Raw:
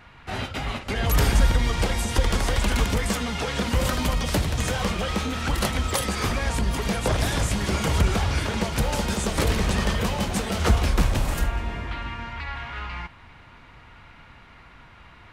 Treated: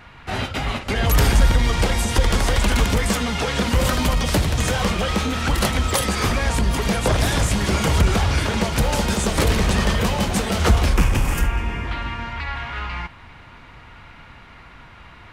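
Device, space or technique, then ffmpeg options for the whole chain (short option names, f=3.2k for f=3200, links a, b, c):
parallel distortion: -filter_complex "[0:a]asplit=2[a][b];[b]asoftclip=type=hard:threshold=-20dB,volume=-8dB[c];[a][c]amix=inputs=2:normalize=0,asettb=1/sr,asplit=3[d][e][f];[d]atrim=end=10.964[g];[e]atrim=start=10.96:end=11.85,asetpts=PTS-STARTPTS,afade=t=in:d=0.004:c=qsin,afade=t=out:st=0.886:d=0.004:c=qsin,equalizer=f=630:t=o:w=0.33:g=-8,equalizer=f=2.5k:t=o:w=0.33:g=5,equalizer=f=4k:t=o:w=0.33:g=-10[h];[f]atrim=start=11.846[i];[g][h]acrossfade=d=0.004:c1=hsin:c2=qsin[j];[j][i]acrossfade=d=0.004:c1=qsin:c2=hsin,volume=2dB"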